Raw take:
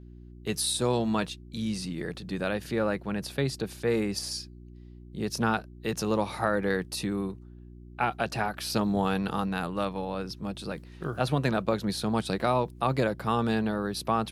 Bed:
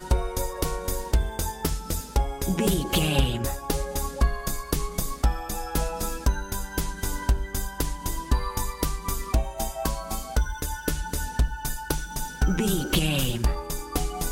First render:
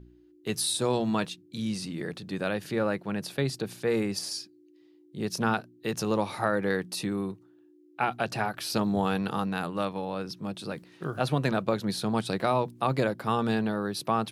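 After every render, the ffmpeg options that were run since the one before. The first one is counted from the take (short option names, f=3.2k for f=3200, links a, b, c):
-af "bandreject=f=60:t=h:w=4,bandreject=f=120:t=h:w=4,bandreject=f=180:t=h:w=4,bandreject=f=240:t=h:w=4"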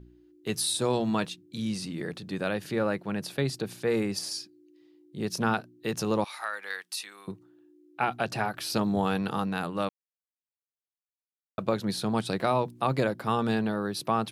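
-filter_complex "[0:a]asettb=1/sr,asplit=3[a][b][c];[a]atrim=end=6.244[d];[b]atrim=start=6.24:end=7.28,asetpts=PTS-STARTPTS,afade=t=in:d=0.004:c=qsin,afade=t=out:st=1.036:d=0.004:c=qsin,highpass=1.4k[e];[c]atrim=start=7.276[f];[d][e]acrossfade=d=0.004:c1=hsin:c2=qsin[g];[g][f]acrossfade=d=0.004:c1=qsin:c2=hsin,asplit=3[h][i][j];[h]atrim=end=9.89,asetpts=PTS-STARTPTS,afade=t=out:st=9.886:d=0.004:c=hsin[k];[i]atrim=start=9.89:end=11.58,asetpts=PTS-STARTPTS,volume=0[l];[j]atrim=start=11.58,asetpts=PTS-STARTPTS,afade=t=in:d=0.004:c=hsin[m];[k][l][m]concat=n=3:v=0:a=1"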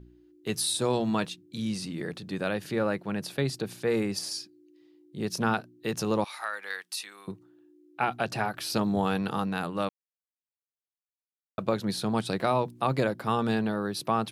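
-af anull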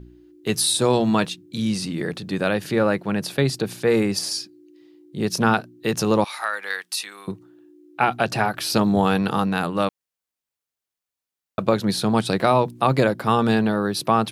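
-af "volume=8dB"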